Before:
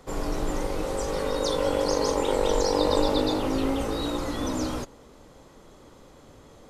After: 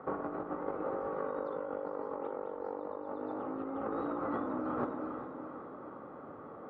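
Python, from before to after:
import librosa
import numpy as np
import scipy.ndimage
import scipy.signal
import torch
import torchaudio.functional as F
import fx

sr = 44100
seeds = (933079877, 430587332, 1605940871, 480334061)

y = fx.ladder_lowpass(x, sr, hz=1400.0, resonance_pct=55)
y = fx.echo_feedback(y, sr, ms=405, feedback_pct=46, wet_db=-15.0)
y = fx.over_compress(y, sr, threshold_db=-42.0, ratio=-1.0)
y = scipy.signal.sosfilt(scipy.signal.butter(2, 210.0, 'highpass', fs=sr, output='sos'), y)
y = fx.low_shelf(y, sr, hz=320.0, db=4.0)
y = fx.notch(y, sr, hz=1000.0, q=7.6)
y = y * librosa.db_to_amplitude(4.5)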